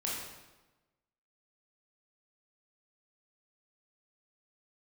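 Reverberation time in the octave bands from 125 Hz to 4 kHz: 1.2 s, 1.2 s, 1.1 s, 1.1 s, 1.0 s, 0.90 s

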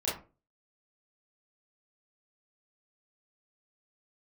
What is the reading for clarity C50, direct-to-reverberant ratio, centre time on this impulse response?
5.0 dB, -8.0 dB, 39 ms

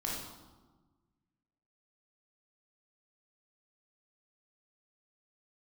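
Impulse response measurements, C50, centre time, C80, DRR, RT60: 0.0 dB, 70 ms, 3.5 dB, -4.5 dB, 1.3 s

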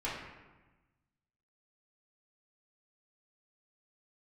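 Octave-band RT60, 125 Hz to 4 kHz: 1.7 s, 1.4 s, 1.2 s, 1.2 s, 1.1 s, 0.80 s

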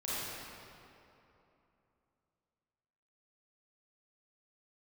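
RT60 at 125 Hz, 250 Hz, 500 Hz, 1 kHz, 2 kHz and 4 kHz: 3.2 s, 3.2 s, 3.0 s, 2.9 s, 2.3 s, 1.8 s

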